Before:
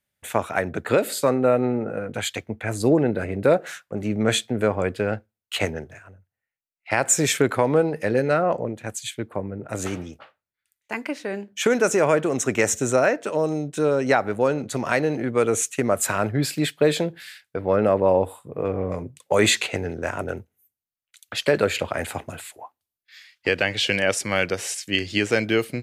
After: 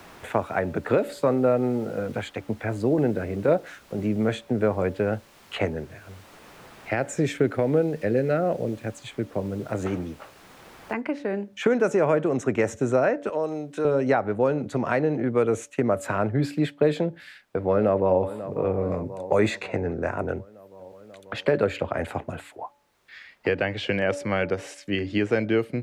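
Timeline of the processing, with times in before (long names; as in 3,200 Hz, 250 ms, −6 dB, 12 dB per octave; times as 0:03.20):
0:01.48–0:04.46: shaped tremolo saw down 2 Hz, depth 40%
0:05.74–0:09.38: parametric band 1,000 Hz −12.5 dB 0.59 octaves
0:10.93: noise floor change −47 dB −67 dB
0:13.29–0:13.85: high-pass filter 680 Hz 6 dB per octave
0:17.16–0:18.22: delay throw 540 ms, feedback 60%, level −15.5 dB
0:18.77–0:20.26: notch filter 3,100 Hz, Q 5.7
whole clip: low-pass filter 1,100 Hz 6 dB per octave; hum removal 286.7 Hz, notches 3; multiband upward and downward compressor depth 40%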